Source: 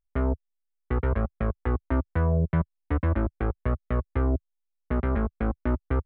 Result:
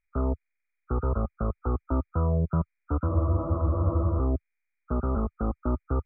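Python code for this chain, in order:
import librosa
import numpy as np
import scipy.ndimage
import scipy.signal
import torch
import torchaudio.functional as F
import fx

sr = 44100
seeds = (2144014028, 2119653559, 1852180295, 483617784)

y = fx.freq_compress(x, sr, knee_hz=1200.0, ratio=4.0)
y = fx.spec_freeze(y, sr, seeds[0], at_s=3.1, hold_s=1.08)
y = F.gain(torch.from_numpy(y), -1.5).numpy()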